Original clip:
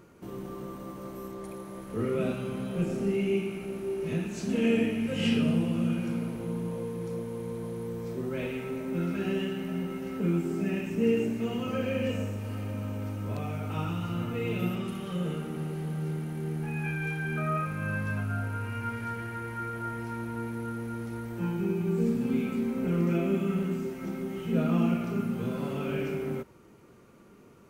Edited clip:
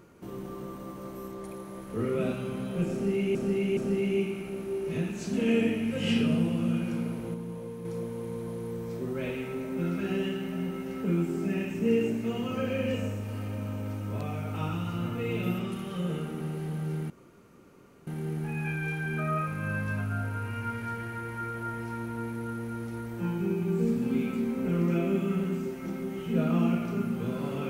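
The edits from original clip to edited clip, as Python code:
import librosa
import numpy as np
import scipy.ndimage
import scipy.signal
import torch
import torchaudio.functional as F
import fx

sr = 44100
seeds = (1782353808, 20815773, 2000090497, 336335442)

y = fx.edit(x, sr, fx.repeat(start_s=2.93, length_s=0.42, count=3),
    fx.clip_gain(start_s=6.5, length_s=0.51, db=-4.5),
    fx.insert_room_tone(at_s=16.26, length_s=0.97), tone=tone)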